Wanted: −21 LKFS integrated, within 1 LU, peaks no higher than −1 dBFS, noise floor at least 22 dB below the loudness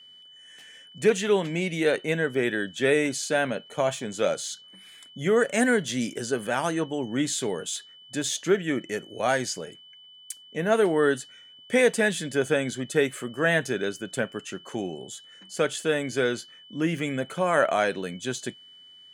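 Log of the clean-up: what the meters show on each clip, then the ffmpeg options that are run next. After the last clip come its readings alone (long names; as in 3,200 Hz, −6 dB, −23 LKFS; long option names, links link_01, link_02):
interfering tone 3,000 Hz; level of the tone −48 dBFS; integrated loudness −26.5 LKFS; sample peak −8.0 dBFS; target loudness −21.0 LKFS
→ -af "bandreject=frequency=3000:width=30"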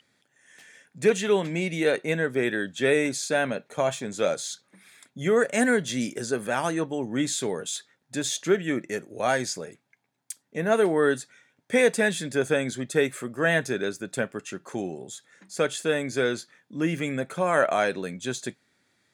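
interfering tone none found; integrated loudness −26.5 LKFS; sample peak −8.0 dBFS; target loudness −21.0 LKFS
→ -af "volume=5.5dB"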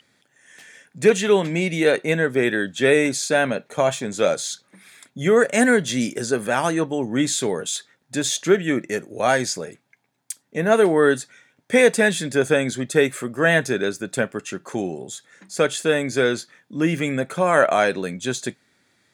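integrated loudness −21.0 LKFS; sample peak −2.5 dBFS; background noise floor −67 dBFS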